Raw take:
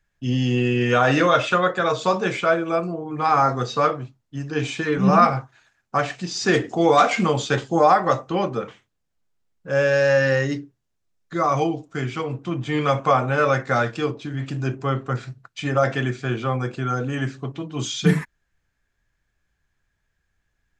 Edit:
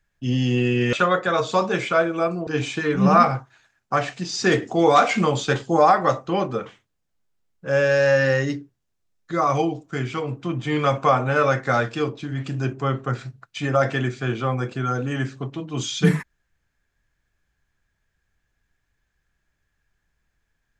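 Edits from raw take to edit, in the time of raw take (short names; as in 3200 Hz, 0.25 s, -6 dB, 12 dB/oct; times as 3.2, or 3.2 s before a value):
0.93–1.45 cut
2.99–4.49 cut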